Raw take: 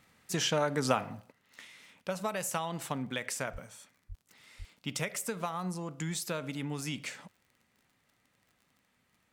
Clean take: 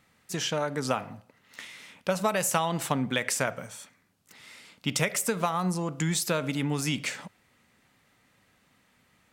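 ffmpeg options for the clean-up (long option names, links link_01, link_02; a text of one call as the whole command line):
ffmpeg -i in.wav -filter_complex "[0:a]adeclick=threshold=4,asplit=3[link_01][link_02][link_03];[link_01]afade=type=out:start_time=3.52:duration=0.02[link_04];[link_02]highpass=frequency=140:width=0.5412,highpass=frequency=140:width=1.3066,afade=type=in:start_time=3.52:duration=0.02,afade=type=out:start_time=3.64:duration=0.02[link_05];[link_03]afade=type=in:start_time=3.64:duration=0.02[link_06];[link_04][link_05][link_06]amix=inputs=3:normalize=0,asplit=3[link_07][link_08][link_09];[link_07]afade=type=out:start_time=4.08:duration=0.02[link_10];[link_08]highpass=frequency=140:width=0.5412,highpass=frequency=140:width=1.3066,afade=type=in:start_time=4.08:duration=0.02,afade=type=out:start_time=4.2:duration=0.02[link_11];[link_09]afade=type=in:start_time=4.2:duration=0.02[link_12];[link_10][link_11][link_12]amix=inputs=3:normalize=0,asplit=3[link_13][link_14][link_15];[link_13]afade=type=out:start_time=4.58:duration=0.02[link_16];[link_14]highpass=frequency=140:width=0.5412,highpass=frequency=140:width=1.3066,afade=type=in:start_time=4.58:duration=0.02,afade=type=out:start_time=4.7:duration=0.02[link_17];[link_15]afade=type=in:start_time=4.7:duration=0.02[link_18];[link_16][link_17][link_18]amix=inputs=3:normalize=0,asetnsamples=nb_out_samples=441:pad=0,asendcmd='1.32 volume volume 8dB',volume=0dB" out.wav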